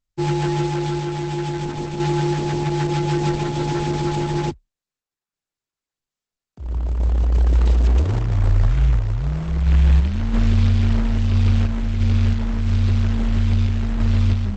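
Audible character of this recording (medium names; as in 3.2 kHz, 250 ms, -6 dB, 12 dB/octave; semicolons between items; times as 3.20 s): random-step tremolo 3 Hz; Opus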